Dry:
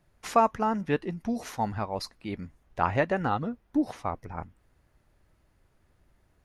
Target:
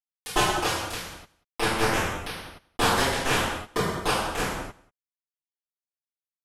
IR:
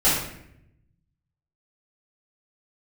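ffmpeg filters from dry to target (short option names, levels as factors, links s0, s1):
-filter_complex "[0:a]asplit=3[s0][s1][s2];[s0]afade=t=out:st=0.7:d=0.02[s3];[s1]highpass=f=1200:p=1,afade=t=in:st=0.7:d=0.02,afade=t=out:st=1.61:d=0.02[s4];[s2]afade=t=in:st=1.61:d=0.02[s5];[s3][s4][s5]amix=inputs=3:normalize=0,acompressor=threshold=0.0126:ratio=6,afreqshift=120,acrusher=bits=4:mix=0:aa=0.000001,aecho=1:1:186:0.0668[s6];[1:a]atrim=start_sample=2205,afade=t=out:st=0.23:d=0.01,atrim=end_sample=10584,asetrate=25578,aresample=44100[s7];[s6][s7]afir=irnorm=-1:irlink=0,volume=0.841"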